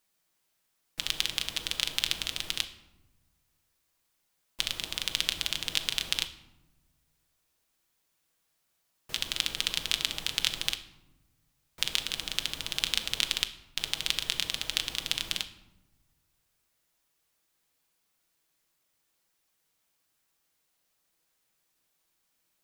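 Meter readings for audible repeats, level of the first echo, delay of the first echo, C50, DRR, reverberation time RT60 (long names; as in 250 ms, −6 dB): no echo audible, no echo audible, no echo audible, 13.0 dB, 7.0 dB, 1.1 s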